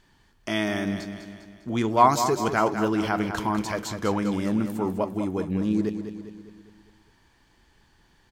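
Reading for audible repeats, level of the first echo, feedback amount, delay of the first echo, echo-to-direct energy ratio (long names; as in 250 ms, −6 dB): 5, −9.0 dB, 51%, 201 ms, −7.5 dB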